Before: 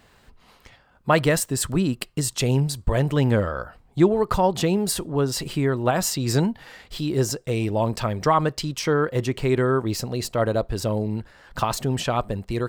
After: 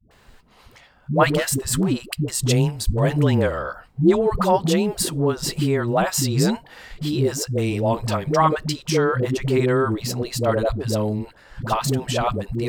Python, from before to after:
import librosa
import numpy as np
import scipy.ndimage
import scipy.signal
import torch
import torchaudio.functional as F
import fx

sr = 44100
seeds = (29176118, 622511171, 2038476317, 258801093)

y = fx.clip_hard(x, sr, threshold_db=-17.5, at=(1.23, 1.81))
y = fx.dispersion(y, sr, late='highs', ms=110.0, hz=380.0)
y = y * 10.0 ** (2.0 / 20.0)